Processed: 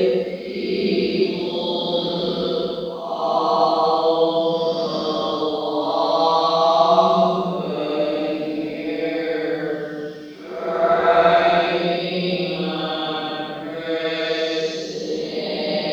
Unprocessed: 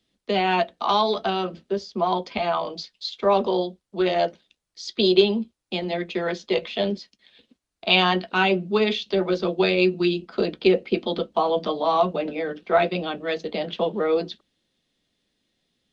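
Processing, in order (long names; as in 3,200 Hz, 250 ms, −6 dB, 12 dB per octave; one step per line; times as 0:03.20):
high shelf with overshoot 3,700 Hz +7.5 dB, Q 1.5
bit reduction 11 bits
extreme stretch with random phases 5.6×, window 0.25 s, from 0:10.76
level +4 dB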